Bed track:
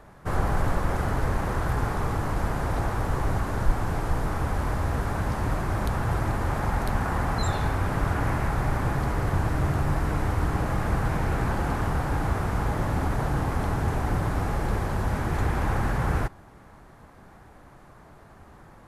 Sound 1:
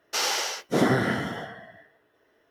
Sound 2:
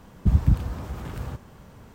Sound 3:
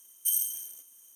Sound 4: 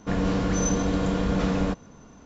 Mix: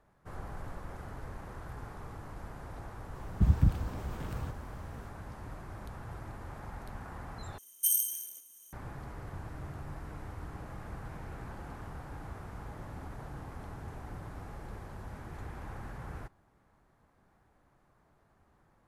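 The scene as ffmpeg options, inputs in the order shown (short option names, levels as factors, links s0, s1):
-filter_complex "[0:a]volume=0.126,asplit=2[s0][s1];[s0]atrim=end=7.584[s2];[3:a]atrim=end=1.15,asetpts=PTS-STARTPTS,volume=0.944[s3];[s1]atrim=start=8.726[s4];[2:a]atrim=end=1.94,asetpts=PTS-STARTPTS,volume=0.531,afade=t=in:d=0.004:c=hsin,afade=t=out:st=1.936:d=0.004:c=hsin,adelay=3150[s5];[s2][s3]acrossfade=d=0.004:c1=hsin:c2=hsin[s6];[s6][s4]acrossfade=d=0.004:c1=hsin:c2=hsin[s7];[s7][s5]amix=inputs=2:normalize=0"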